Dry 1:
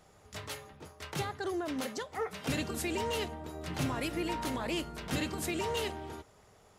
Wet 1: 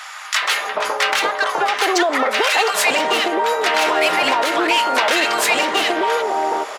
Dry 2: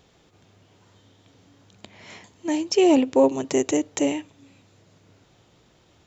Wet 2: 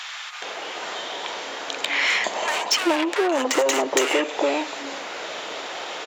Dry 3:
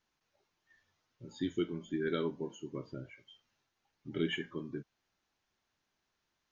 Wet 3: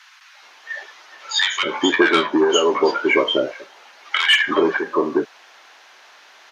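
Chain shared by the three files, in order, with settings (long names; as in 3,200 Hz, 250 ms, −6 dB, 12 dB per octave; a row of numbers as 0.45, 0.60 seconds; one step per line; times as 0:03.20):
downsampling to 32,000 Hz
mid-hump overdrive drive 32 dB, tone 1,500 Hz, clips at −6.5 dBFS
high-pass filter 640 Hz 12 dB per octave
downward compressor 8 to 1, threshold −28 dBFS
multiband delay without the direct sound highs, lows 420 ms, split 1,100 Hz
normalise the peak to −3 dBFS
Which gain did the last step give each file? +15.5, +11.5, +17.5 decibels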